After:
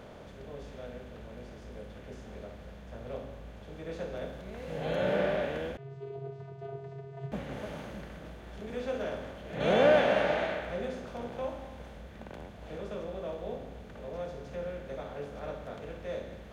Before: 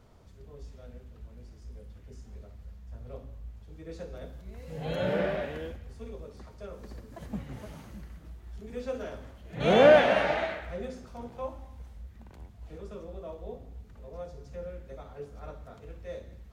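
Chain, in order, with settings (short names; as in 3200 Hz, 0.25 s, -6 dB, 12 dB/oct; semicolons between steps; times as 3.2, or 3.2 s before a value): per-bin compression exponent 0.6; 5.77–7.32 vocoder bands 16, square 136 Hz; gain -6.5 dB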